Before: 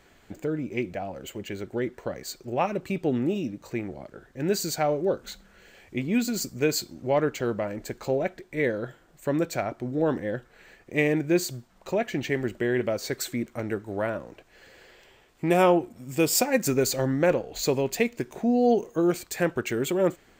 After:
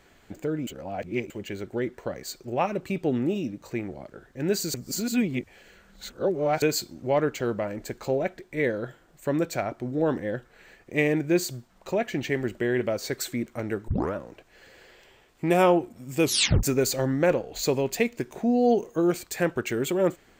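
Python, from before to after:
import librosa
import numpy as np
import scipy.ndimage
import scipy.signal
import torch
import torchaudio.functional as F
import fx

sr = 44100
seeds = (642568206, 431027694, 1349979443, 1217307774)

y = fx.edit(x, sr, fx.reverse_span(start_s=0.67, length_s=0.63),
    fx.reverse_span(start_s=4.74, length_s=1.88),
    fx.tape_start(start_s=13.88, length_s=0.26),
    fx.tape_stop(start_s=16.23, length_s=0.4), tone=tone)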